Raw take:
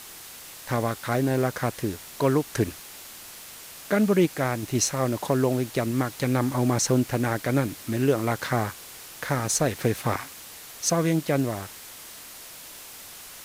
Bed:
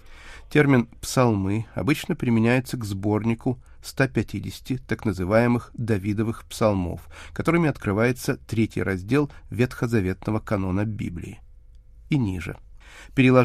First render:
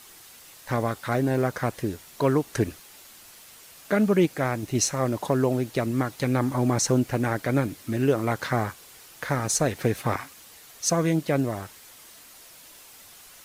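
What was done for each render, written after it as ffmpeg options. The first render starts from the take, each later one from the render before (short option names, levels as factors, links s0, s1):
-af "afftdn=nr=7:nf=-43"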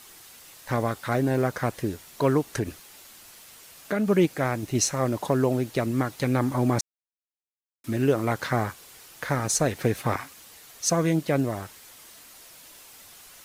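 -filter_complex "[0:a]asettb=1/sr,asplit=3[s0][s1][s2];[s0]atrim=end=2.584[s3];[s1]atrim=start=2.58:end=4.08,asetpts=PTS-STARTPTS,afade=t=in:d=0.004:c=qsin,afade=t=out:st=1.496:d=0.004:c=qsin,acompressor=threshold=0.0631:ratio=2:attack=3.2:release=140:knee=1:detection=peak[s4];[s2]atrim=start=4.076[s5];[s3][s4]acrossfade=d=0.004:c1=hsin:c2=qsin[s6];[s6][s5]acrossfade=d=0.004:c1=qsin:c2=hsin,asplit=3[s7][s8][s9];[s7]atrim=end=6.81,asetpts=PTS-STARTPTS,afade=t=out:st=6.806:d=0.004:c=hsin[s10];[s8]atrim=start=6.81:end=7.84,asetpts=PTS-STARTPTS,volume=0[s11];[s9]atrim=start=7.84,asetpts=PTS-STARTPTS,afade=t=in:d=0.004:c=hsin[s12];[s10][s11][s12]concat=n=3:v=0:a=1"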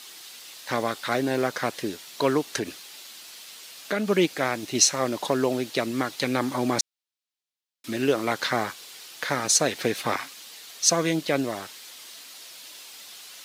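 -af "highpass=220,equalizer=f=3900:t=o:w=1.6:g=10"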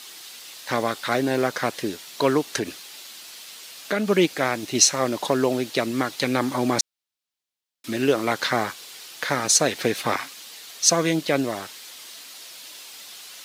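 -af "volume=1.33"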